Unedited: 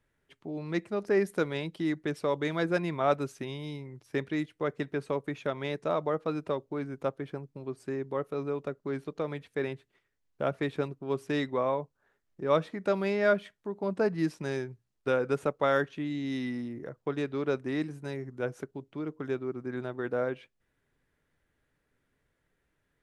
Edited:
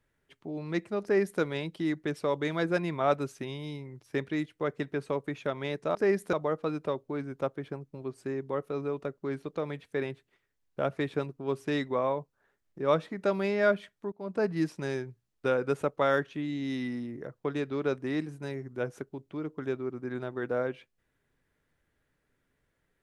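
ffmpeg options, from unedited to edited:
-filter_complex "[0:a]asplit=4[s0][s1][s2][s3];[s0]atrim=end=5.952[s4];[s1]atrim=start=1.028:end=1.412[s5];[s2]atrim=start=5.948:end=13.74,asetpts=PTS-STARTPTS,afade=t=out:st=7.788:d=0.004:c=hsin:silence=0.158489[s6];[s3]atrim=start=13.74,asetpts=PTS-STARTPTS,afade=t=in:d=0.35:silence=0.158489[s7];[s4][s5]acrossfade=d=0.004:c1=hsin:c2=hsin[s8];[s6][s7]concat=n=2:v=0:a=1[s9];[s8][s9]acrossfade=d=0.004:c1=hsin:c2=hsin"

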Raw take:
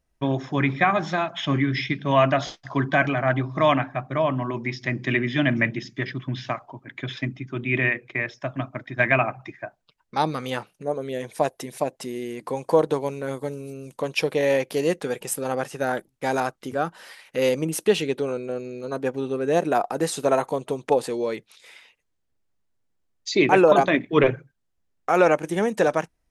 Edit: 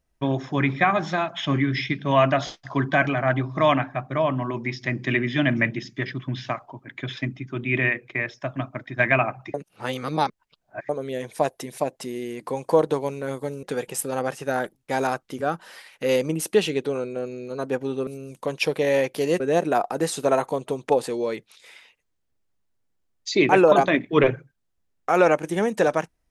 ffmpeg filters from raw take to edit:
-filter_complex "[0:a]asplit=6[s0][s1][s2][s3][s4][s5];[s0]atrim=end=9.542[s6];[s1]atrim=start=9.538:end=10.892,asetpts=PTS-STARTPTS,areverse[s7];[s2]atrim=start=10.888:end=13.632[s8];[s3]atrim=start=14.958:end=19.402[s9];[s4]atrim=start=13.628:end=14.962[s10];[s5]atrim=start=19.398[s11];[s6][s7]acrossfade=d=0.004:c1=hsin:c2=hsin[s12];[s12][s8]acrossfade=d=0.004:c1=hsin:c2=hsin[s13];[s13][s9]acrossfade=d=0.004:c1=hsin:c2=hsin[s14];[s14][s10]acrossfade=d=0.004:c1=hsin:c2=hsin[s15];[s15][s11]acrossfade=d=0.004:c1=hsin:c2=hsin"

